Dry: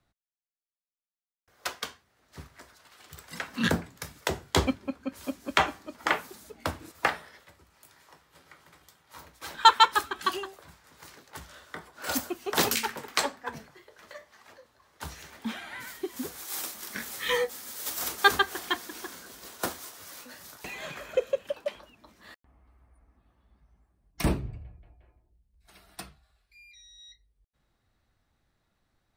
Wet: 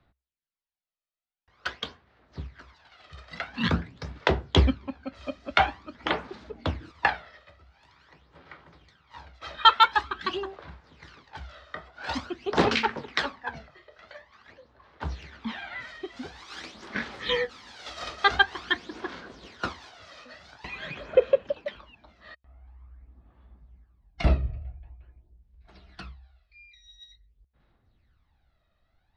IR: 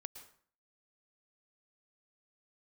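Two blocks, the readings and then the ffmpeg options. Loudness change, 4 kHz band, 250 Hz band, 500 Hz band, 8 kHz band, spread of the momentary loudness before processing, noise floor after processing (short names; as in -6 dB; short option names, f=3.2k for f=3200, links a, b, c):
+1.5 dB, +1.0 dB, +1.5 dB, +3.5 dB, -15.0 dB, 22 LU, -75 dBFS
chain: -af "lowpass=f=4.4k:w=0.5412,lowpass=f=4.4k:w=1.3066,aphaser=in_gain=1:out_gain=1:delay=1.6:decay=0.57:speed=0.47:type=sinusoidal,equalizer=f=65:w=6.9:g=8.5"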